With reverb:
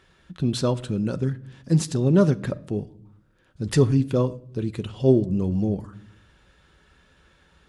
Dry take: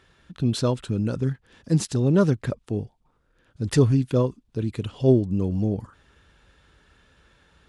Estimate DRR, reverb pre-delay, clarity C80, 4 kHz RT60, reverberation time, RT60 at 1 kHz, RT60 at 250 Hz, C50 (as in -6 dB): 11.0 dB, 5 ms, 23.0 dB, 0.40 s, 0.60 s, 0.50 s, 1.1 s, 20.5 dB